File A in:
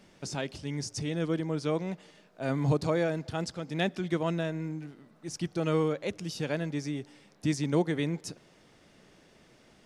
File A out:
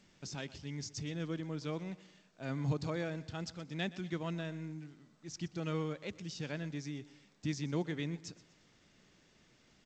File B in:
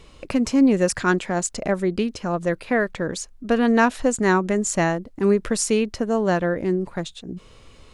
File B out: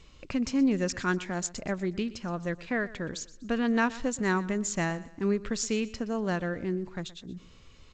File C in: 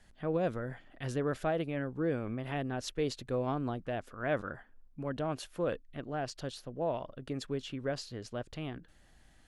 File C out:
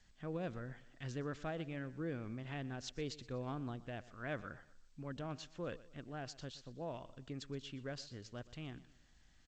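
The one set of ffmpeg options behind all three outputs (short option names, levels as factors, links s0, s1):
-filter_complex "[0:a]equalizer=f=590:t=o:w=2:g=-6.5,asplit=2[s0][s1];[s1]aecho=0:1:122|244|366:0.119|0.0452|0.0172[s2];[s0][s2]amix=inputs=2:normalize=0,volume=0.531" -ar 16000 -c:a g722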